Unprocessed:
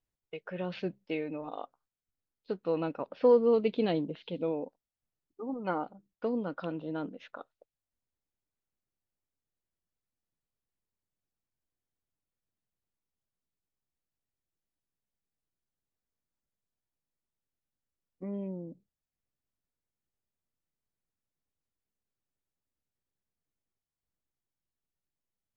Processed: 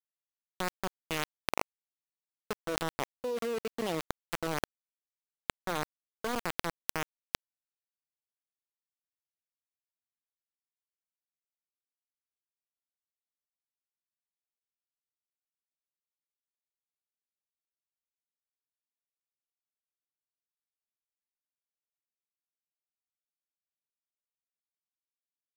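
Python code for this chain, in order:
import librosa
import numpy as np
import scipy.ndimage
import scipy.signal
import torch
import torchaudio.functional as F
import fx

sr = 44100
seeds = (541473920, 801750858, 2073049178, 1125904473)

y = fx.highpass(x, sr, hz=240.0, slope=6)
y = np.where(np.abs(y) >= 10.0 ** (-28.5 / 20.0), y, 0.0)
y = fx.env_flatten(y, sr, amount_pct=100)
y = y * 10.0 ** (-13.0 / 20.0)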